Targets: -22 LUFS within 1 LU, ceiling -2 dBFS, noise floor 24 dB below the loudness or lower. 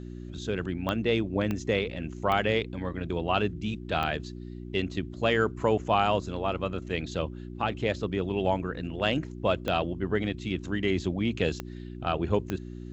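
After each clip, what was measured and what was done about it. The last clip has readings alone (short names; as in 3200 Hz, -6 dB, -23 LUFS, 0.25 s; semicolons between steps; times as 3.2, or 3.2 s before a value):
clicks 7; hum 60 Hz; harmonics up to 360 Hz; hum level -38 dBFS; loudness -29.5 LUFS; peak -10.5 dBFS; loudness target -22.0 LUFS
-> de-click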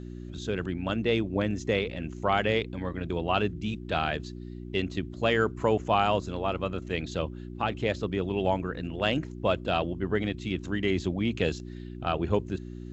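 clicks 0; hum 60 Hz; harmonics up to 360 Hz; hum level -38 dBFS
-> de-hum 60 Hz, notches 6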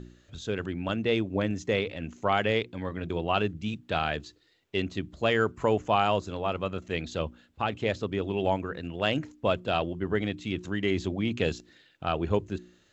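hum none; loudness -29.5 LUFS; peak -10.5 dBFS; loudness target -22.0 LUFS
-> gain +7.5 dB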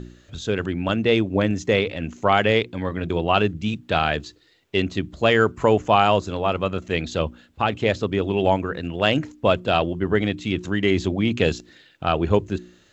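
loudness -22.0 LUFS; peak -3.0 dBFS; noise floor -56 dBFS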